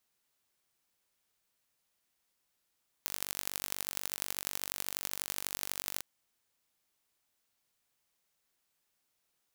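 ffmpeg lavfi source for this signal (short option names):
-f lavfi -i "aevalsrc='0.501*eq(mod(n,915),0)*(0.5+0.5*eq(mod(n,3660),0))':d=2.95:s=44100"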